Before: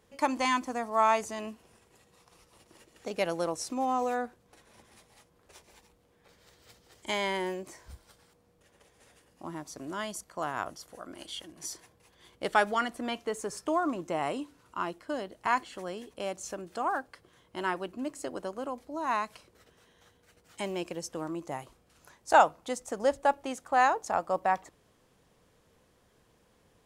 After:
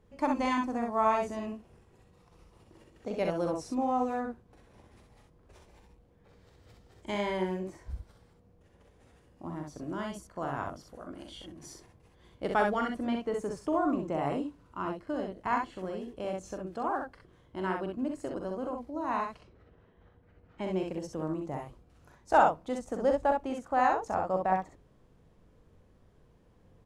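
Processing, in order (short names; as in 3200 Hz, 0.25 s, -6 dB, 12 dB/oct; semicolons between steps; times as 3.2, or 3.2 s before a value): 19.11–20.73 low-pass opened by the level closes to 2100 Hz, open at -29 dBFS; tilt -3 dB/oct; on a send: early reflections 43 ms -8 dB, 64 ms -4 dB; on the sum: gain -4 dB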